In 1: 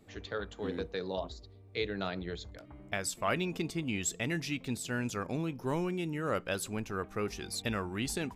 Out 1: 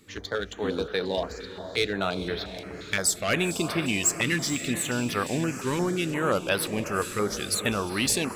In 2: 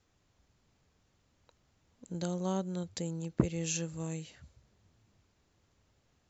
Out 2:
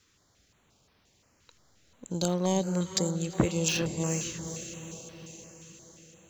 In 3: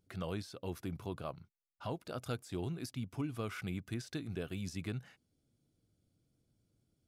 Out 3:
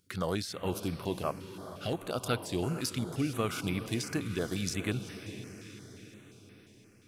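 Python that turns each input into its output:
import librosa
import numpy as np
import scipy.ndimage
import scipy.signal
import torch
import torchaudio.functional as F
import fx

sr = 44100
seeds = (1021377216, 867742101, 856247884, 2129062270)

p1 = fx.backlash(x, sr, play_db=-40.5)
p2 = x + (p1 * librosa.db_to_amplitude(-7.0))
p3 = fx.tilt_eq(p2, sr, slope=2.0)
p4 = 10.0 ** (-21.5 / 20.0) * np.tanh(p3 / 10.0 ** (-21.5 / 20.0))
p5 = fx.high_shelf(p4, sr, hz=12000.0, db=-6.5)
p6 = p5 + fx.echo_diffused(p5, sr, ms=454, feedback_pct=58, wet_db=-10.5, dry=0)
p7 = fx.filter_held_notch(p6, sr, hz=5.7, low_hz=700.0, high_hz=7000.0)
y = p7 * librosa.db_to_amplitude(8.0)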